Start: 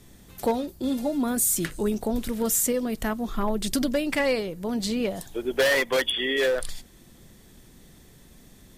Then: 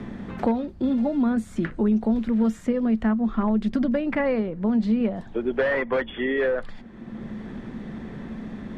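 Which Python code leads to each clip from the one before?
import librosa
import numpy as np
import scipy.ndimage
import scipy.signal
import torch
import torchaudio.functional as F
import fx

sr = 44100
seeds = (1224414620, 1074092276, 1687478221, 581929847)

y = scipy.signal.sosfilt(scipy.signal.cheby1(2, 1.0, 1600.0, 'lowpass', fs=sr, output='sos'), x)
y = fx.peak_eq(y, sr, hz=220.0, db=12.0, octaves=0.26)
y = fx.band_squash(y, sr, depth_pct=70)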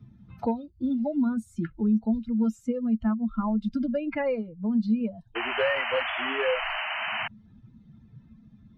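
y = fx.bin_expand(x, sr, power=2.0)
y = fx.notch_comb(y, sr, f0_hz=380.0)
y = fx.spec_paint(y, sr, seeds[0], shape='noise', start_s=5.35, length_s=1.93, low_hz=610.0, high_hz=3100.0, level_db=-31.0)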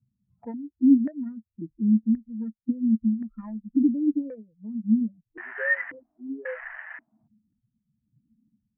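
y = fx.wiener(x, sr, points=25)
y = fx.filter_lfo_lowpass(y, sr, shape='square', hz=0.93, low_hz=290.0, high_hz=1800.0, q=6.1)
y = fx.spectral_expand(y, sr, expansion=1.5)
y = y * 10.0 ** (-2.0 / 20.0)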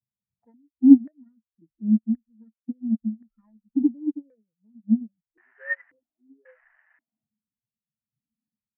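y = fx.upward_expand(x, sr, threshold_db=-33.0, expansion=2.5)
y = y * 10.0 ** (7.5 / 20.0)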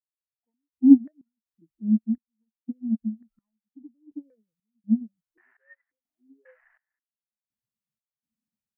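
y = fx.step_gate(x, sr, bpm=62, pattern='...xx.xxx..xxx', floor_db=-24.0, edge_ms=4.5)
y = y * 10.0 ** (-1.5 / 20.0)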